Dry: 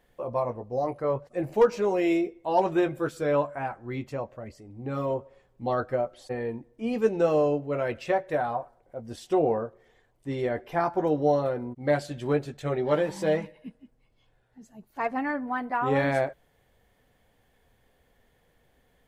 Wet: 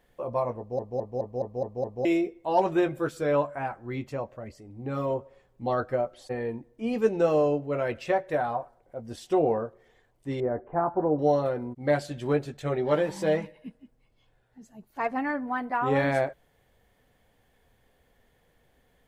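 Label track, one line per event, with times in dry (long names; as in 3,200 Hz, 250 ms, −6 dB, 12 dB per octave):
0.580000	0.580000	stutter in place 0.21 s, 7 plays
10.400000	11.190000	low-pass filter 1,300 Hz 24 dB per octave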